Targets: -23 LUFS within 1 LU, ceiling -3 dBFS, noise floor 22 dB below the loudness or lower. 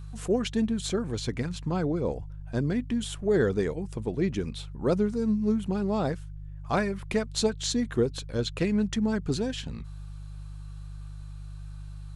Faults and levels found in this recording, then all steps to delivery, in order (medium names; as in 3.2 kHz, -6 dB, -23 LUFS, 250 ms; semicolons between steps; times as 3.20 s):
hum 50 Hz; highest harmonic 150 Hz; hum level -38 dBFS; loudness -29.0 LUFS; peak level -13.0 dBFS; loudness target -23.0 LUFS
-> de-hum 50 Hz, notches 3; trim +6 dB